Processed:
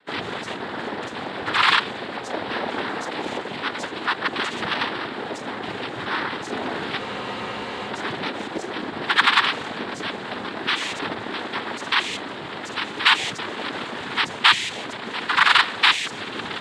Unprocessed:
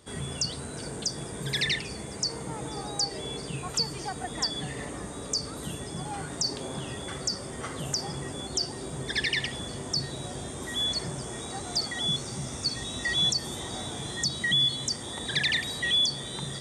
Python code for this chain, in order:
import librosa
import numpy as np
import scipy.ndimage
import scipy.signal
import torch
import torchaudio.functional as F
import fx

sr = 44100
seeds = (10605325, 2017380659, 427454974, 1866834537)

p1 = fx.lower_of_two(x, sr, delay_ms=0.63)
p2 = fx.rider(p1, sr, range_db=3, speed_s=2.0)
p3 = p1 + F.gain(torch.from_numpy(p2), -2.0).numpy()
p4 = fx.leveller(p3, sr, passes=2)
p5 = fx.cabinet(p4, sr, low_hz=440.0, low_slope=12, high_hz=2300.0, hz=(490.0, 740.0, 1200.0, 1800.0), db=(5, -8, -7, 8))
p6 = fx.leveller(p5, sr, passes=1)
p7 = fx.noise_vocoder(p6, sr, seeds[0], bands=6)
p8 = fx.spec_freeze(p7, sr, seeds[1], at_s=7.01, hold_s=0.87)
p9 = fx.doppler_dist(p8, sr, depth_ms=0.15)
y = F.gain(torch.from_numpy(p9), -1.5).numpy()